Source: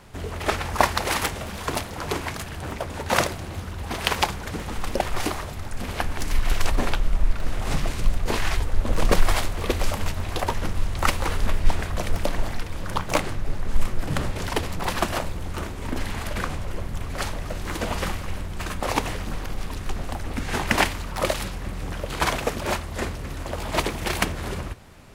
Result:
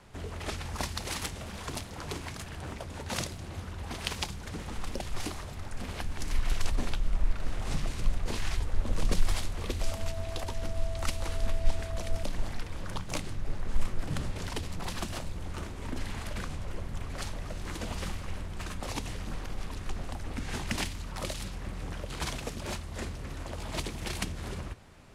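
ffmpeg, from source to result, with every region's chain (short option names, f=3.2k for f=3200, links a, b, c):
-filter_complex "[0:a]asettb=1/sr,asplit=3[a][b][c];[a]atrim=end=9.814[d];[b]atrim=start=9.81:end=12.23,asetpts=PTS-STARTPTS,afade=t=in:d=0.004:c=qsin,afade=t=out:st=2.416:d=0.004:c=qsin,equalizer=f=160:w=2.4:g=-6.5,aeval=exprs='val(0)+0.0355*sin(2*PI*660*n/s)':c=same[e];[c]atrim=start=12.226[f];[d][e]acrossfade=d=0.004:c1=hsin:c2=qsin[g];[g][f]acrossfade=d=0.004:c1=qsin:c2=hsin,lowpass=11k,acrossover=split=280|3000[h][i][j];[i]acompressor=threshold=-36dB:ratio=2.5[k];[h][k][j]amix=inputs=3:normalize=0,volume=-6.5dB"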